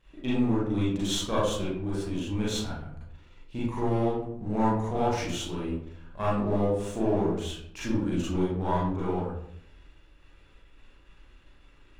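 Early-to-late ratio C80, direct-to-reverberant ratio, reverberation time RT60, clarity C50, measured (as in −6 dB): 4.5 dB, −8.5 dB, 0.65 s, −1.0 dB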